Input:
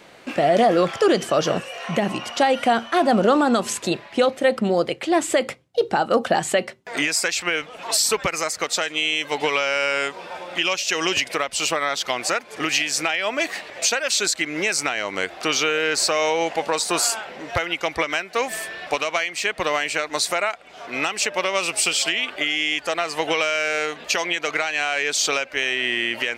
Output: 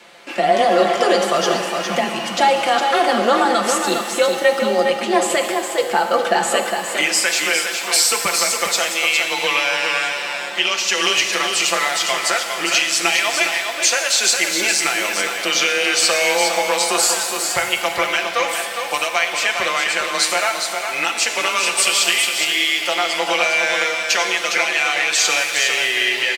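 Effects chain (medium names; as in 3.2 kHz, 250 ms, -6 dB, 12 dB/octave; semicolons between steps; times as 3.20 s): bass shelf 500 Hz -9 dB; comb 6 ms; frequency shift +22 Hz; on a send: delay 409 ms -6 dB; on the sum: pitch-shifted reverb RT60 2 s, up +7 st, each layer -8 dB, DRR 5.5 dB; trim +2.5 dB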